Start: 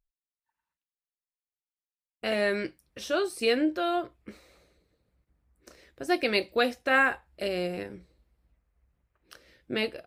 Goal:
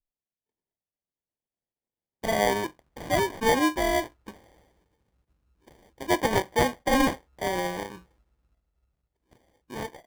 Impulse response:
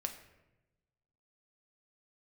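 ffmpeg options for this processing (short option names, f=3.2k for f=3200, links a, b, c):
-af "acrusher=samples=33:mix=1:aa=0.000001,adynamicequalizer=threshold=0.00891:dfrequency=1200:dqfactor=0.7:tfrequency=1200:tqfactor=0.7:attack=5:release=100:ratio=0.375:range=3:mode=boostabove:tftype=bell,dynaudnorm=f=280:g=11:m=11.5dB,volume=-7.5dB"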